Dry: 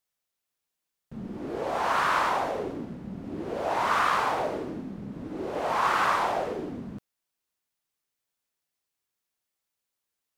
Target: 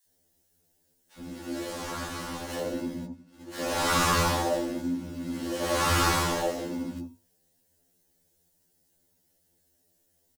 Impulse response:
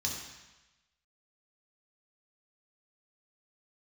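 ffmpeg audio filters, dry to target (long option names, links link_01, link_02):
-filter_complex "[0:a]bandreject=frequency=50:width_type=h:width=6,bandreject=frequency=100:width_type=h:width=6,bandreject=frequency=150:width_type=h:width=6,bandreject=frequency=200:width_type=h:width=6,bandreject=frequency=250:width_type=h:width=6,bandreject=frequency=300:width_type=h:width=6,asettb=1/sr,asplit=3[link_01][link_02][link_03];[link_01]atrim=end=3.054[link_04];[link_02]atrim=start=3.05:end=3.53,asetpts=PTS-STARTPTS,afade=type=in:duration=0.004:curve=qsin,afade=type=out:start_time=0.476:duration=0.004:curve=qsin,agate=range=-33dB:threshold=-25dB:ratio=3:detection=peak[link_05];[link_03]atrim=start=3.526[link_06];[link_04][link_05]acrossfade=duration=0.004:curve1=hsin:curve2=qsin[link_07];[link_07][link_06]acrossfade=duration=0.004:curve1=qsin:curve2=hsin,bass=frequency=250:gain=-1,treble=frequency=4000:gain=15,aecho=1:1:3.6:0.85,asettb=1/sr,asplit=3[link_08][link_09][link_10];[link_08]atrim=end=1.144[link_11];[link_09]atrim=start=1.14:end=2.5,asetpts=PTS-STARTPTS,afade=type=in:duration=0.004:curve=qsin,afade=type=out:start_time=1.356:duration=0.004:curve=qsin,acrossover=split=340|1200[link_12][link_13][link_14];[link_12]acompressor=threshold=-40dB:ratio=4[link_15];[link_13]acompressor=threshold=-39dB:ratio=4[link_16];[link_14]acompressor=threshold=-38dB:ratio=4[link_17];[link_15][link_16][link_17]amix=inputs=3:normalize=0[link_18];[link_10]atrim=start=2.496[link_19];[link_11][link_18]acrossfade=duration=0.004:curve1=hsin:curve2=qsin[link_20];[link_20][link_19]acrossfade=duration=0.004:curve1=qsin:curve2=hsin,asplit=2[link_21][link_22];[link_22]acrusher=samples=37:mix=1:aa=0.000001,volume=-6.5dB[link_23];[link_21][link_23]amix=inputs=2:normalize=0,acrossover=split=960[link_24][link_25];[link_24]adelay=70[link_26];[link_26][link_25]amix=inputs=2:normalize=0,asplit=2[link_27][link_28];[1:a]atrim=start_sample=2205,atrim=end_sample=3087,adelay=23[link_29];[link_28][link_29]afir=irnorm=-1:irlink=0,volume=-17.5dB[link_30];[link_27][link_30]amix=inputs=2:normalize=0,afftfilt=real='re*2*eq(mod(b,4),0)':imag='im*2*eq(mod(b,4),0)':win_size=2048:overlap=0.75"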